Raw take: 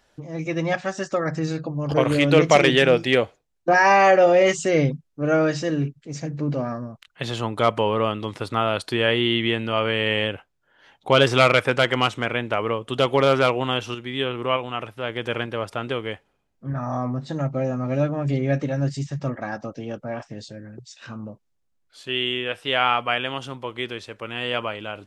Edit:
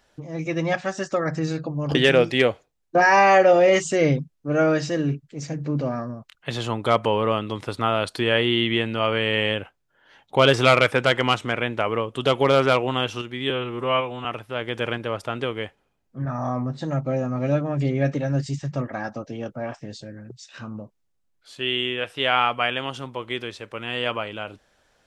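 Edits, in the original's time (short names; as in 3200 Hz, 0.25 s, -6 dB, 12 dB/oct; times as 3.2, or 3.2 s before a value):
1.95–2.68 cut
14.23–14.73 stretch 1.5×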